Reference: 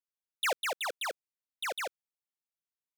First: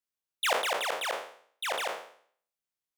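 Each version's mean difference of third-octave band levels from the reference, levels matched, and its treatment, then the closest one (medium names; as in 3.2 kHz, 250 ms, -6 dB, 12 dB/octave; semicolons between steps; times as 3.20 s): 8.5 dB: spectral sustain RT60 0.55 s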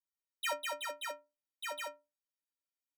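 6.0 dB: inharmonic resonator 280 Hz, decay 0.3 s, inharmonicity 0.03; trim +9 dB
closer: second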